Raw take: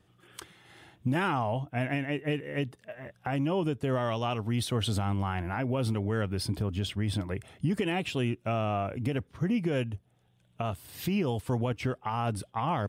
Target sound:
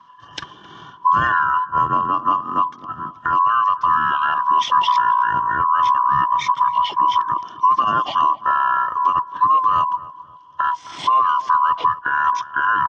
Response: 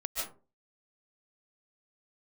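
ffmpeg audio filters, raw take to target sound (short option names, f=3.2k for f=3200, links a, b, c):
-filter_complex "[0:a]afftfilt=real='real(if(lt(b,272),68*(eq(floor(b/68),0)*1+eq(floor(b/68),1)*0+eq(floor(b/68),2)*3+eq(floor(b/68),3)*2)+mod(b,68),b),0)':imag='imag(if(lt(b,272),68*(eq(floor(b/68),0)*1+eq(floor(b/68),1)*0+eq(floor(b/68),2)*3+eq(floor(b/68),3)*2)+mod(b,68),b),0)':win_size=2048:overlap=0.75,highpass=f=110:w=0.5412,highpass=f=110:w=1.3066,equalizer=f=230:t=q:w=4:g=7,equalizer=f=500:t=q:w=4:g=6,equalizer=f=730:t=q:w=4:g=-3,equalizer=f=1.6k:t=q:w=4:g=7,equalizer=f=2.5k:t=q:w=4:g=3,equalizer=f=5.4k:t=q:w=4:g=6,lowpass=f=9.7k:w=0.5412,lowpass=f=9.7k:w=1.3066,asplit=2[a][b];[b]acompressor=threshold=-35dB:ratio=10,volume=-1.5dB[c];[a][c]amix=inputs=2:normalize=0,asetrate=27781,aresample=44100,atempo=1.5874,asplit=2[d][e];[e]adelay=263,lowpass=f=830:p=1,volume=-13.5dB,asplit=2[f][g];[g]adelay=263,lowpass=f=830:p=1,volume=0.49,asplit=2[h][i];[i]adelay=263,lowpass=f=830:p=1,volume=0.49,asplit=2[j][k];[k]adelay=263,lowpass=f=830:p=1,volume=0.49,asplit=2[l][m];[m]adelay=263,lowpass=f=830:p=1,volume=0.49[n];[d][f][h][j][l][n]amix=inputs=6:normalize=0,volume=5.5dB"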